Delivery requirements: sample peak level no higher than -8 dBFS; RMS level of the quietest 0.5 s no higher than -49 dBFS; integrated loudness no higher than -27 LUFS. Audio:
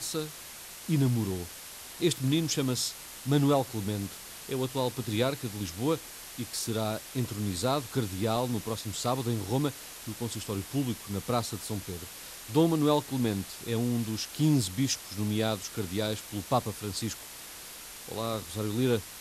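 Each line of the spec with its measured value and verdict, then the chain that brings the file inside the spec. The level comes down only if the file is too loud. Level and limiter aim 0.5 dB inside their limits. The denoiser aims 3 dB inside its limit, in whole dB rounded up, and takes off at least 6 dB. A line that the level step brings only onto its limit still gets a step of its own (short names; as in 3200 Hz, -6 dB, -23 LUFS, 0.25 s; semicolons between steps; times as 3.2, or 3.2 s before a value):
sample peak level -12.0 dBFS: OK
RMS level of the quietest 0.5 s -45 dBFS: fail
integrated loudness -31.0 LUFS: OK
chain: denoiser 7 dB, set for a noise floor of -45 dBFS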